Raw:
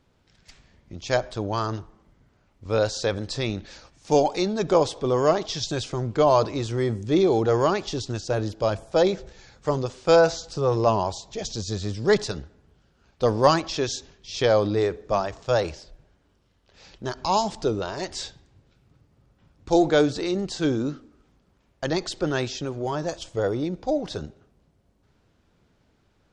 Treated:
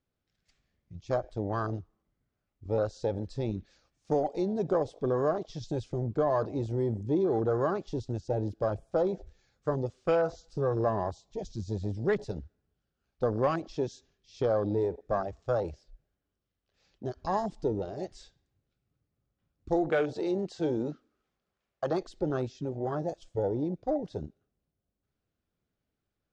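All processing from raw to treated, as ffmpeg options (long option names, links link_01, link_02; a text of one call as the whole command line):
ffmpeg -i in.wav -filter_complex "[0:a]asettb=1/sr,asplit=3[link_01][link_02][link_03];[link_01]atrim=end=19.924[link_04];[link_02]atrim=start=19.92:end=22.03,asetpts=PTS-STARTPTS,afade=type=in:duration=0.004:curve=qsin,afade=type=out:start_time=2.106:duration=0.004:curve=qsin,bandreject=frequency=280:width=6.8,asplit=2[link_05][link_06];[link_06]highpass=frequency=720:poles=1,volume=12dB,asoftclip=type=tanh:threshold=-8.5dB[link_07];[link_05][link_07]amix=inputs=2:normalize=0,lowpass=frequency=5300:poles=1,volume=-6dB[link_08];[link_03]atrim=start=22.026[link_09];[link_04][link_08]acrossfade=duration=0.004:curve1=hsin:curve2=qsin[link_10];[link_10][link_09]acrossfade=duration=0.004:curve1=qsin:curve2=hsin,bandreject=frequency=930:width=7.9,afwtdn=0.0447,acompressor=threshold=-21dB:ratio=3,volume=-3.5dB" out.wav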